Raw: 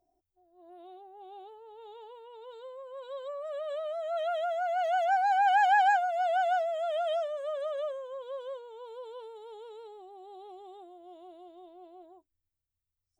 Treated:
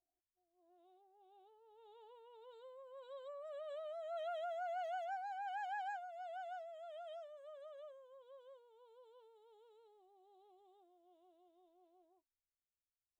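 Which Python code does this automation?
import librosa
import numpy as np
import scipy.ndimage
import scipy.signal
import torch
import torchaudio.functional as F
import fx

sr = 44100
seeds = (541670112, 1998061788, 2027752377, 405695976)

y = fx.gain(x, sr, db=fx.line((1.32, -19.5), (2.15, -11.5), (4.71, -11.5), (5.34, -20.0)))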